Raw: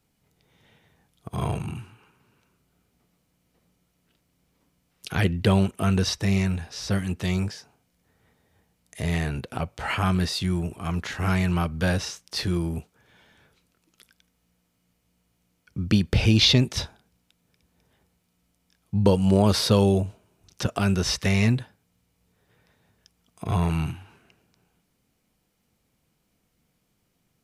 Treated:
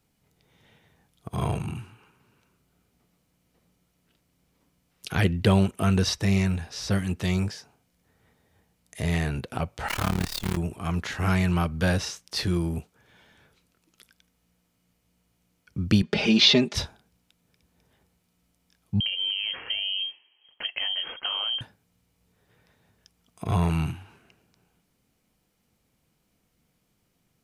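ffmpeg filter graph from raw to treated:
-filter_complex "[0:a]asettb=1/sr,asplit=3[a][b][c];[a]atrim=end=9.884[d];[b]atrim=start=9.88:end=10.57,asetpts=PTS-STARTPTS,afade=t=in:d=0.004:c=qsin,afade=t=out:st=0.686:d=0.004:c=qsin,acrusher=bits=5:dc=4:mix=0:aa=0.000001,tremolo=f=36:d=0.947[e];[c]atrim=start=10.566[f];[d][e]acrossfade=d=0.004:c1=hsin:c2=qsin[g];[g][f]acrossfade=d=0.004:c1=qsin:c2=hsin,asettb=1/sr,asplit=3[h][i][j];[h]atrim=end=16.024[k];[i]atrim=start=16.02:end=16.75,asetpts=PTS-STARTPTS,afade=t=in:d=0.004:c=qsin,afade=t=out:st=0.726:d=0.004:c=qsin,highpass=220,lowpass=4.9k,aecho=1:1:4.9:0.93,atrim=end_sample=32193[l];[j]atrim=start=16.746[m];[k][l]acrossfade=d=0.004:c1=hsin:c2=qsin[n];[n][m]acrossfade=d=0.004:c1=qsin:c2=hsin,asettb=1/sr,asplit=3[o][p][q];[o]atrim=end=19.004[r];[p]atrim=start=19:end=21.61,asetpts=PTS-STARTPTS,afade=t=in:d=0.004:c=qsin,afade=t=out:st=2.606:d=0.004:c=qsin,acompressor=threshold=-24dB:ratio=16:attack=3.2:release=140:knee=1:detection=peak,lowpass=f=2.8k:t=q:w=0.5098,lowpass=f=2.8k:t=q:w=0.6013,lowpass=f=2.8k:t=q:w=0.9,lowpass=f=2.8k:t=q:w=2.563,afreqshift=-3300[s];[q]atrim=start=21.606[t];[r][s]acrossfade=d=0.004:c1=hsin:c2=qsin[u];[u][t]acrossfade=d=0.004:c1=qsin:c2=hsin"

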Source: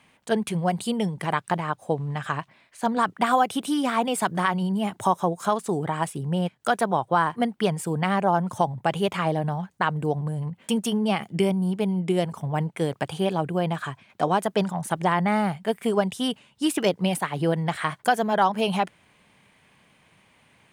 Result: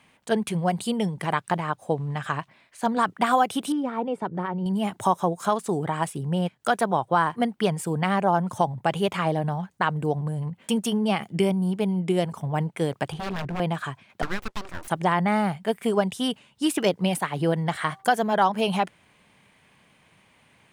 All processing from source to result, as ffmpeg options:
-filter_complex "[0:a]asettb=1/sr,asplit=3[a][b][c];[a]atrim=end=3.724[d];[b]atrim=start=3.72:end=4.66,asetpts=PTS-STARTPTS,afade=t=in:d=0.004:c=qsin,afade=t=out:st=0.936:d=0.004:c=qsin,deesser=0.45,bandpass=f=240:t=q:w=0.53,aecho=1:1:2.2:0.31,atrim=end_sample=41454[e];[c]atrim=start=4.656[f];[d][e]acrossfade=d=0.004:c1=hsin:c2=qsin[g];[g][f]acrossfade=d=0.004:c1=qsin:c2=hsin,asettb=1/sr,asplit=3[h][i][j];[h]atrim=end=13.124[k];[i]atrim=start=13.12:end=13.6,asetpts=PTS-STARTPTS,afade=t=in:d=0.004:c=qsin,afade=t=out:st=0.476:d=0.004:c=qsin,bass=f=250:g=4,treble=f=4k:g=-12,tremolo=f=210:d=0.333,aeval=exprs='0.0562*(abs(mod(val(0)/0.0562+3,4)-2)-1)':c=same[l];[j]atrim=start=13.596[m];[k][l]acrossfade=d=0.004:c1=hsin:c2=qsin[n];[n][m]acrossfade=d=0.004:c1=qsin:c2=hsin,asettb=1/sr,asplit=3[o][p][q];[o]atrim=end=14.224[r];[p]atrim=start=14.22:end=14.88,asetpts=PTS-STARTPTS,afade=t=in:d=0.004:c=qsin,afade=t=out:st=0.656:d=0.004:c=qsin,highpass=170,lowpass=7.8k,acrossover=split=590|1700[s][t][u];[s]acompressor=threshold=-38dB:ratio=4[v];[t]acompressor=threshold=-25dB:ratio=4[w];[u]acompressor=threshold=-38dB:ratio=4[x];[v][w][x]amix=inputs=3:normalize=0,aeval=exprs='abs(val(0))':c=same[y];[q]atrim=start=14.876[z];[r][y]acrossfade=d=0.004:c1=hsin:c2=qsin[aa];[aa][z]acrossfade=d=0.004:c1=qsin:c2=hsin,asettb=1/sr,asplit=3[ab][ac][ad];[ab]atrim=end=17.574[ae];[ac]atrim=start=17.57:end=18.15,asetpts=PTS-STARTPTS,afade=t=in:d=0.004:c=qsin,afade=t=out:st=0.576:d=0.004:c=qsin,bandreject=f=2.5k:w=13,bandreject=f=388.5:t=h:w=4,bandreject=f=777:t=h:w=4,bandreject=f=1.1655k:t=h:w=4[af];[ad]atrim=start=18.146[ag];[ae][af]acrossfade=d=0.004:c1=hsin:c2=qsin[ah];[ah][ag]acrossfade=d=0.004:c1=qsin:c2=hsin"

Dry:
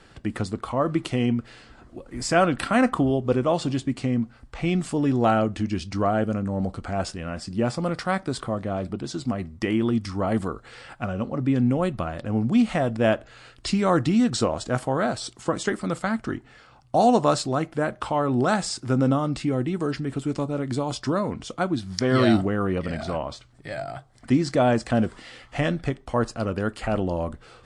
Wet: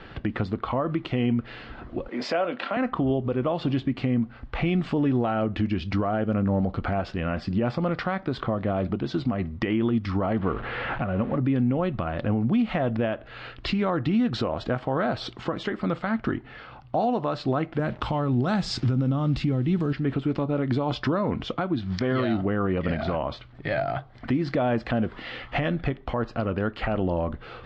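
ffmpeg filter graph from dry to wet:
-filter_complex "[0:a]asettb=1/sr,asplit=3[a][b][c];[a]atrim=end=2.084[d];[b]atrim=start=2.08:end=2.77,asetpts=PTS-STARTPTS,afade=t=in:d=0.004:c=qsin,afade=t=out:st=0.686:d=0.004:c=qsin,highpass=f=240:w=0.5412,highpass=f=240:w=1.3066,equalizer=f=300:t=q:w=4:g=-8,equalizer=f=560:t=q:w=4:g=5,equalizer=f=1.2k:t=q:w=4:g=-3,equalizer=f=1.7k:t=q:w=4:g=-3,lowpass=f=7.1k:w=0.5412,lowpass=f=7.1k:w=1.3066,asplit=2[e][f];[f]adelay=24,volume=-13dB[g];[e][g]amix=inputs=2:normalize=0,atrim=end_sample=30429[h];[c]atrim=start=2.766[i];[d][h]acrossfade=d=0.004:c1=hsin:c2=qsin[j];[j][i]acrossfade=d=0.004:c1=qsin:c2=hsin,asettb=1/sr,asplit=3[k][l][m];[k]atrim=end=10.384[n];[l]atrim=start=10.38:end=11.37,asetpts=PTS-STARTPTS,afade=t=in:d=0.004:c=qsin,afade=t=out:st=0.986:d=0.004:c=qsin,aeval=exprs='val(0)+0.5*0.0168*sgn(val(0))':c=same,lowpass=2.4k[o];[m]atrim=start=11.366[p];[n][o]acrossfade=d=0.004:c1=hsin:c2=qsin[q];[q][p]acrossfade=d=0.004:c1=qsin:c2=hsin,asettb=1/sr,asplit=3[r][s][t];[r]atrim=end=17.794[u];[s]atrim=start=17.79:end=19.93,asetpts=PTS-STARTPTS,afade=t=in:d=0.004:c=qsin,afade=t=out:st=2.136:d=0.004:c=qsin,bass=f=250:g=11,treble=f=4k:g=15,acrusher=bits=6:mix=0:aa=0.5[v];[t]atrim=start=19.926[w];[u][v]acrossfade=d=0.004:c1=hsin:c2=qsin[x];[x][w]acrossfade=d=0.004:c1=qsin:c2=hsin,lowpass=f=3.6k:w=0.5412,lowpass=f=3.6k:w=1.3066,acompressor=threshold=-26dB:ratio=2,alimiter=level_in=0.5dB:limit=-24dB:level=0:latency=1:release=319,volume=-0.5dB,volume=8.5dB"

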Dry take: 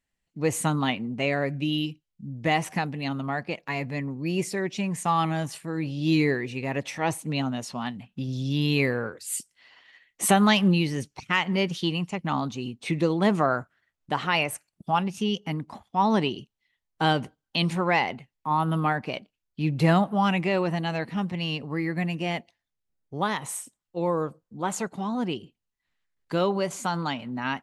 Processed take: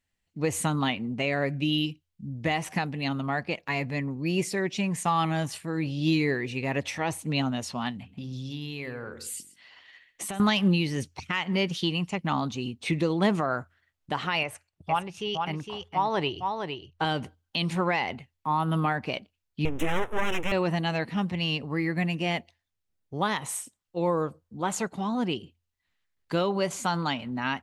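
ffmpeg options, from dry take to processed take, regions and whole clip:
-filter_complex "[0:a]asettb=1/sr,asplit=3[a][b][c];[a]atrim=end=7.974[d];[b]atrim=start=7.97:end=10.4,asetpts=PTS-STARTPTS,afade=t=in:d=0.004:c=qsin,afade=t=out:st=2.426:d=0.004:c=qsin,bandreject=f=45.39:t=h:w=4,bandreject=f=90.78:t=h:w=4,bandreject=f=136.17:t=h:w=4,bandreject=f=181.56:t=h:w=4,bandreject=f=226.95:t=h:w=4,bandreject=f=272.34:t=h:w=4,bandreject=f=317.73:t=h:w=4,bandreject=f=363.12:t=h:w=4,bandreject=f=408.51:t=h:w=4,bandreject=f=453.9:t=h:w=4,bandreject=f=499.29:t=h:w=4,acompressor=threshold=-33dB:ratio=6:attack=3.2:release=140:knee=1:detection=peak,aecho=1:1:131:0.15,atrim=end_sample=107163[e];[c]atrim=start=10.396[f];[d][e]acrossfade=d=0.004:c1=hsin:c2=qsin[g];[g][f]acrossfade=d=0.004:c1=qsin:c2=hsin,asettb=1/sr,asplit=3[h][i][j];[h]atrim=end=14.434[k];[i]atrim=start=14.43:end=17.05,asetpts=PTS-STARTPTS,afade=t=in:d=0.004:c=qsin,afade=t=out:st=2.616:d=0.004:c=qsin,lowpass=f=3.2k:p=1,equalizer=f=220:t=o:w=0.61:g=-14,aecho=1:1:460:0.473,atrim=end_sample=115542[l];[j]atrim=start=17.046[m];[k][l]acrossfade=d=0.004:c1=hsin:c2=qsin[n];[n][m]acrossfade=d=0.004:c1=qsin:c2=hsin,asettb=1/sr,asplit=3[o][p][q];[o]atrim=end=19.654[r];[p]atrim=start=19.65:end=20.52,asetpts=PTS-STARTPTS,afade=t=in:d=0.004:c=qsin,afade=t=out:st=0.866:d=0.004:c=qsin,highshelf=f=9.7k:g=6.5,aeval=exprs='abs(val(0))':c=same,asuperstop=centerf=4500:order=4:qfactor=1.9[s];[q]atrim=start=20.516[t];[r][s]acrossfade=d=0.004:c1=hsin:c2=qsin[u];[u][t]acrossfade=d=0.004:c1=qsin:c2=hsin,equalizer=f=3.3k:t=o:w=1.7:g=2.5,alimiter=limit=-15dB:level=0:latency=1:release=198,equalizer=f=85:t=o:w=0.2:g=13.5"

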